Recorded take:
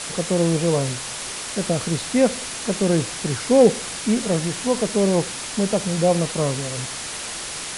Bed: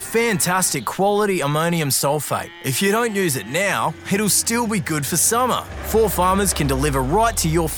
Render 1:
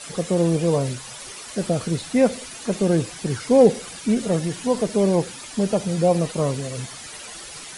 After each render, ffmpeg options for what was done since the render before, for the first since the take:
ffmpeg -i in.wav -af "afftdn=noise_reduction=11:noise_floor=-31" out.wav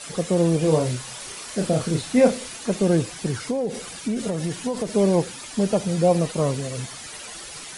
ffmpeg -i in.wav -filter_complex "[0:a]asettb=1/sr,asplit=3[link_01][link_02][link_03];[link_01]atrim=end=0.594[link_04];[link_02]atrim=start=0.59:end=2.57,asetpts=PTS-STARTPTS,afade=type=in:duration=0.004:curve=qsin,afade=type=out:start_time=1.976:duration=0.004:curve=qsin,asplit=2[link_05][link_06];[link_06]adelay=32,volume=-5.5dB[link_07];[link_05][link_07]amix=inputs=2:normalize=0,atrim=end_sample=87318[link_08];[link_03]atrim=start=2.566[link_09];[link_04][link_08]acrossfade=duration=0.004:curve1=hsin:curve2=qsin[link_10];[link_10][link_09]acrossfade=duration=0.004:curve1=qsin:curve2=hsin,asettb=1/sr,asplit=3[link_11][link_12][link_13];[link_11]atrim=end=3.304[link_14];[link_12]atrim=start=3.3:end=4.9,asetpts=PTS-STARTPTS,afade=type=in:duration=0.004:curve=qsin,afade=type=out:start_time=1.596:duration=0.004:curve=qsin,acompressor=threshold=-20dB:ratio=16:attack=3.2:release=140:knee=1:detection=peak[link_15];[link_13]atrim=start=4.896[link_16];[link_14][link_15]acrossfade=duration=0.004:curve1=hsin:curve2=qsin[link_17];[link_17][link_16]acrossfade=duration=0.004:curve1=qsin:curve2=hsin" out.wav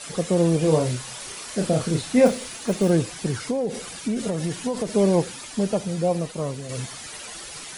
ffmpeg -i in.wav -filter_complex "[0:a]asettb=1/sr,asplit=3[link_01][link_02][link_03];[link_01]atrim=end=2.264[link_04];[link_02]atrim=start=2.26:end=2.9,asetpts=PTS-STARTPTS,afade=type=in:duration=0.004:curve=qsin,afade=type=out:start_time=0.636:duration=0.004:curve=qsin,acrusher=bits=7:mode=log:mix=0:aa=0.000001[link_05];[link_03]atrim=start=2.896[link_06];[link_04][link_05]acrossfade=duration=0.004:curve1=hsin:curve2=qsin[link_07];[link_07][link_06]acrossfade=duration=0.004:curve1=qsin:curve2=hsin,asplit=2[link_08][link_09];[link_08]atrim=end=6.69,asetpts=PTS-STARTPTS,afade=type=out:start_time=5.36:duration=1.33:curve=qua:silence=0.501187[link_10];[link_09]atrim=start=6.69,asetpts=PTS-STARTPTS,afade=type=in:duration=0.004:curve=hsin:silence=0.501187[link_11];[link_10][link_11]concat=n=2:v=0:a=1" out.wav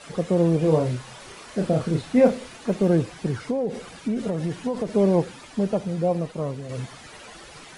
ffmpeg -i in.wav -af "lowpass=frequency=1800:poles=1" out.wav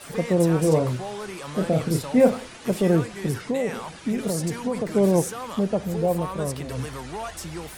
ffmpeg -i in.wav -i bed.wav -filter_complex "[1:a]volume=-16.5dB[link_01];[0:a][link_01]amix=inputs=2:normalize=0" out.wav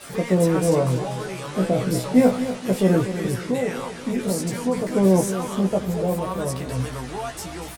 ffmpeg -i in.wav -filter_complex "[0:a]asplit=2[link_01][link_02];[link_02]adelay=16,volume=-3dB[link_03];[link_01][link_03]amix=inputs=2:normalize=0,asplit=2[link_04][link_05];[link_05]aecho=0:1:242|484|726|968|1210:0.282|0.127|0.0571|0.0257|0.0116[link_06];[link_04][link_06]amix=inputs=2:normalize=0" out.wav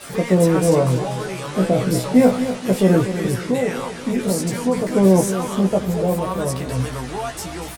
ffmpeg -i in.wav -af "volume=3.5dB,alimiter=limit=-3dB:level=0:latency=1" out.wav

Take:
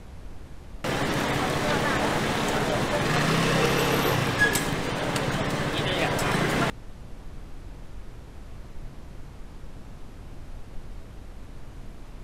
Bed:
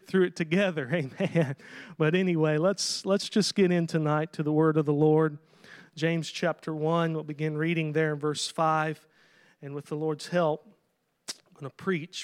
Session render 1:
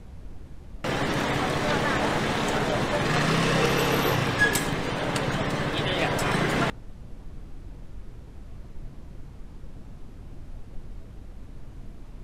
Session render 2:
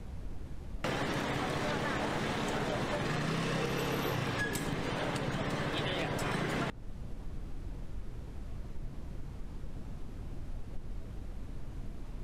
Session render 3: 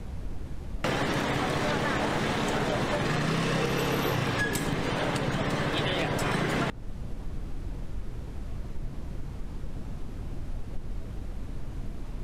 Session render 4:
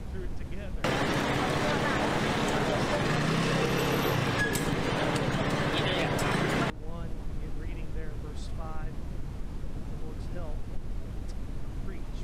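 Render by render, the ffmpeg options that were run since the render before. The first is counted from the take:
ffmpeg -i in.wav -af "afftdn=noise_reduction=6:noise_floor=-44" out.wav
ffmpeg -i in.wav -filter_complex "[0:a]acrossover=split=420[link_01][link_02];[link_02]alimiter=limit=-18dB:level=0:latency=1:release=455[link_03];[link_01][link_03]amix=inputs=2:normalize=0,acompressor=threshold=-33dB:ratio=3" out.wav
ffmpeg -i in.wav -af "volume=6dB" out.wav
ffmpeg -i in.wav -i bed.wav -filter_complex "[1:a]volume=-19.5dB[link_01];[0:a][link_01]amix=inputs=2:normalize=0" out.wav

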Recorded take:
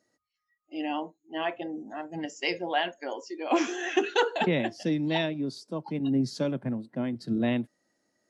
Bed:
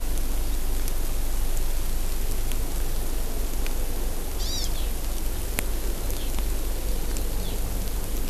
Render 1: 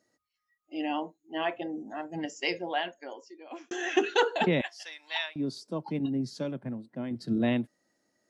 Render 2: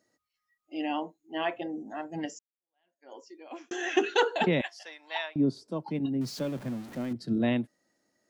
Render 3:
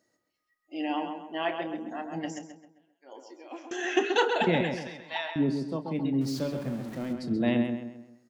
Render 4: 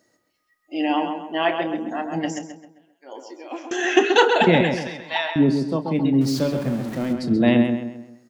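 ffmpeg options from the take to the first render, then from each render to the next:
ffmpeg -i in.wav -filter_complex "[0:a]asettb=1/sr,asplit=3[link_01][link_02][link_03];[link_01]atrim=end=4.614[link_04];[link_02]atrim=start=4.61:end=5.36,asetpts=PTS-STARTPTS,afade=type=in:duration=0.004:curve=qsin,afade=type=out:start_time=0.746:duration=0.004:curve=qsin,highpass=frequency=950:width=0.5412,highpass=frequency=950:width=1.3066[link_05];[link_03]atrim=start=5.356[link_06];[link_04][link_05]acrossfade=duration=0.004:curve1=hsin:curve2=qsin[link_07];[link_07][link_06]acrossfade=duration=0.004:curve1=qsin:curve2=hsin,asplit=4[link_08][link_09][link_10][link_11];[link_08]atrim=end=3.71,asetpts=PTS-STARTPTS,afade=type=out:start_time=2.33:duration=1.38[link_12];[link_09]atrim=start=3.71:end=6.062,asetpts=PTS-STARTPTS,afade=type=in:duration=0.004:curve=hsin[link_13];[link_10]atrim=start=6.058:end=7.112,asetpts=PTS-STARTPTS,volume=-5dB[link_14];[link_11]atrim=start=7.108[link_15];[link_12][link_13]concat=n=2:v=0:a=1[link_16];[link_16][link_14]acrossfade=duration=0.004:curve1=hsin:curve2=hsin[link_17];[link_17][link_15]acrossfade=duration=0.004:curve1=hsin:curve2=hsin" out.wav
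ffmpeg -i in.wav -filter_complex "[0:a]asettb=1/sr,asplit=3[link_01][link_02][link_03];[link_01]atrim=end=4.794[link_04];[link_02]atrim=start=4.79:end=5.68,asetpts=PTS-STARTPTS,afade=type=in:duration=0.004:curve=qsin,afade=type=out:start_time=0.886:duration=0.004:curve=qsin,tiltshelf=frequency=1500:gain=7[link_05];[link_03]atrim=start=5.676[link_06];[link_04][link_05]acrossfade=duration=0.004:curve1=hsin:curve2=qsin[link_07];[link_07][link_06]acrossfade=duration=0.004:curve1=qsin:curve2=hsin,asettb=1/sr,asplit=3[link_08][link_09][link_10];[link_08]atrim=end=6.214[link_11];[link_09]atrim=start=6.21:end=7.13,asetpts=PTS-STARTPTS,afade=type=in:duration=0.004:curve=qsin,afade=type=out:start_time=0.916:duration=0.004:curve=qsin,aeval=exprs='val(0)+0.5*0.00944*sgn(val(0))':channel_layout=same[link_12];[link_10]atrim=start=7.126[link_13];[link_11][link_12]acrossfade=duration=0.004:curve1=hsin:curve2=qsin[link_14];[link_14][link_13]acrossfade=duration=0.004:curve1=qsin:curve2=hsin,asplit=2[link_15][link_16];[link_15]atrim=end=2.39,asetpts=PTS-STARTPTS,afade=type=out:start_time=2.386:duration=0.004:curve=hsin[link_17];[link_16]atrim=start=2.39,asetpts=PTS-STARTPTS,afade=type=in:duration=0.77:curve=exp[link_18];[link_17][link_18]concat=n=2:v=0:a=1" out.wav
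ffmpeg -i in.wav -filter_complex "[0:a]asplit=2[link_01][link_02];[link_02]adelay=30,volume=-12dB[link_03];[link_01][link_03]amix=inputs=2:normalize=0,asplit=2[link_04][link_05];[link_05]adelay=132,lowpass=frequency=3200:poles=1,volume=-5.5dB,asplit=2[link_06][link_07];[link_07]adelay=132,lowpass=frequency=3200:poles=1,volume=0.42,asplit=2[link_08][link_09];[link_09]adelay=132,lowpass=frequency=3200:poles=1,volume=0.42,asplit=2[link_10][link_11];[link_11]adelay=132,lowpass=frequency=3200:poles=1,volume=0.42,asplit=2[link_12][link_13];[link_13]adelay=132,lowpass=frequency=3200:poles=1,volume=0.42[link_14];[link_06][link_08][link_10][link_12][link_14]amix=inputs=5:normalize=0[link_15];[link_04][link_15]amix=inputs=2:normalize=0" out.wav
ffmpeg -i in.wav -af "volume=9dB" out.wav

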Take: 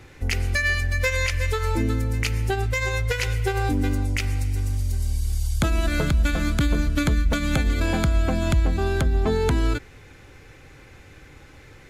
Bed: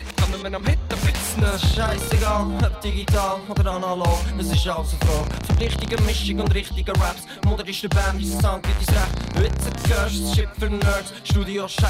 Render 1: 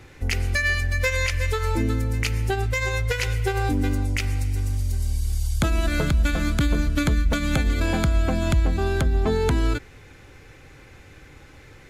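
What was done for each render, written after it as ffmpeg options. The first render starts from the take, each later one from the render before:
ffmpeg -i in.wav -af anull out.wav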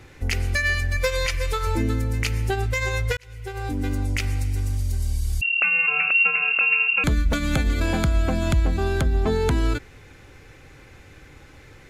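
ffmpeg -i in.wav -filter_complex "[0:a]asettb=1/sr,asplit=3[link_01][link_02][link_03];[link_01]atrim=end=0.964[link_04];[link_02]atrim=start=0.96:end=1.67,asetpts=PTS-STARTPTS,afade=type=in:duration=0.004:curve=qsin,afade=type=out:start_time=0.706:duration=0.004:curve=qsin,aecho=1:1:6:0.59,atrim=end_sample=31311[link_05];[link_03]atrim=start=1.666[link_06];[link_04][link_05]acrossfade=duration=0.004:curve1=hsin:curve2=qsin[link_07];[link_07][link_06]acrossfade=duration=0.004:curve1=qsin:curve2=hsin,asettb=1/sr,asplit=3[link_08][link_09][link_10];[link_08]atrim=end=5.414[link_11];[link_09]atrim=start=5.41:end=7.04,asetpts=PTS-STARTPTS,afade=type=in:duration=0.004:curve=qsin,afade=type=out:start_time=1.626:duration=0.004:curve=qsin,lowpass=frequency=2400:width_type=q:width=0.5098,lowpass=frequency=2400:width_type=q:width=0.6013,lowpass=frequency=2400:width_type=q:width=0.9,lowpass=frequency=2400:width_type=q:width=2.563,afreqshift=-2800[link_12];[link_10]atrim=start=7.036[link_13];[link_11][link_12]acrossfade=duration=0.004:curve1=hsin:curve2=qsin[link_14];[link_14][link_13]acrossfade=duration=0.004:curve1=qsin:curve2=hsin,asplit=2[link_15][link_16];[link_15]atrim=end=3.17,asetpts=PTS-STARTPTS,afade=type=out:start_time=3.166:duration=0.004:curve=hsin[link_17];[link_16]atrim=start=3.17,asetpts=PTS-STARTPTS,afade=type=in:duration=0.94[link_18];[link_17][link_18]concat=n=2:v=0:a=1" out.wav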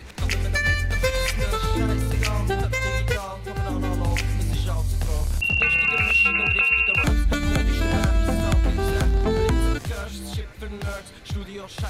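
ffmpeg -i in.wav -i bed.wav -filter_complex "[1:a]volume=-10.5dB[link_01];[0:a][link_01]amix=inputs=2:normalize=0" out.wav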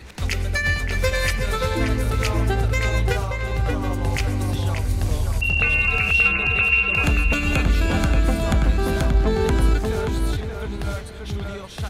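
ffmpeg -i in.wav -filter_complex "[0:a]asplit=2[link_01][link_02];[link_02]adelay=580,lowpass=frequency=2300:poles=1,volume=-3dB,asplit=2[link_03][link_04];[link_04]adelay=580,lowpass=frequency=2300:poles=1,volume=0.35,asplit=2[link_05][link_06];[link_06]adelay=580,lowpass=frequency=2300:poles=1,volume=0.35,asplit=2[link_07][link_08];[link_08]adelay=580,lowpass=frequency=2300:poles=1,volume=0.35,asplit=2[link_09][link_10];[link_10]adelay=580,lowpass=frequency=2300:poles=1,volume=0.35[link_11];[link_01][link_03][link_05][link_07][link_09][link_11]amix=inputs=6:normalize=0" out.wav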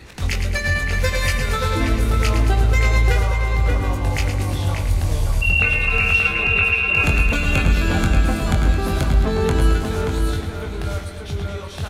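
ffmpeg -i in.wav -filter_complex "[0:a]asplit=2[link_01][link_02];[link_02]adelay=22,volume=-5.5dB[link_03];[link_01][link_03]amix=inputs=2:normalize=0,aecho=1:1:109|218|327|436|545|654|763:0.376|0.222|0.131|0.0772|0.0455|0.0269|0.0159" out.wav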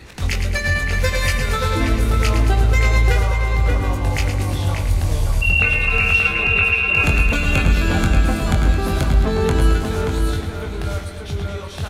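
ffmpeg -i in.wav -af "volume=1dB" out.wav

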